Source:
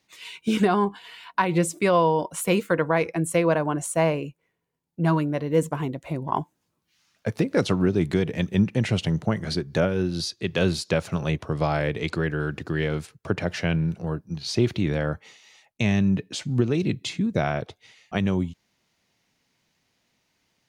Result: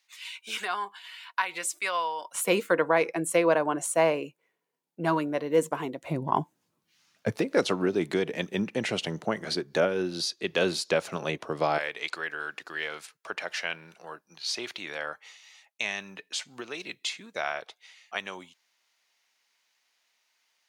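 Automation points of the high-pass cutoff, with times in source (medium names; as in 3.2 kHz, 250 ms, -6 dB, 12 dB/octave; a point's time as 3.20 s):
1.3 kHz
from 2.35 s 330 Hz
from 6.02 s 130 Hz
from 7.36 s 330 Hz
from 11.78 s 930 Hz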